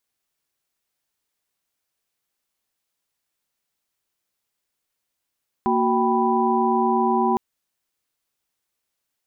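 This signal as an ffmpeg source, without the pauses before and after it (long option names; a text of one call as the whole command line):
ffmpeg -f lavfi -i "aevalsrc='0.075*(sin(2*PI*233.08*t)+sin(2*PI*369.99*t)+sin(2*PI*783.99*t)+sin(2*PI*987.77*t))':duration=1.71:sample_rate=44100" out.wav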